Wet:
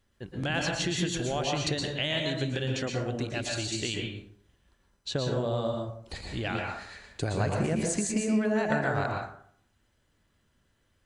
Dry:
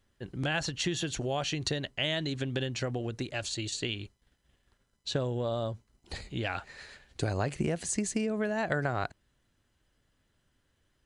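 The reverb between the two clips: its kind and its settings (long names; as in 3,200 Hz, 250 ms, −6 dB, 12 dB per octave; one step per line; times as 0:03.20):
dense smooth reverb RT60 0.6 s, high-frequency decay 0.55×, pre-delay 105 ms, DRR 0 dB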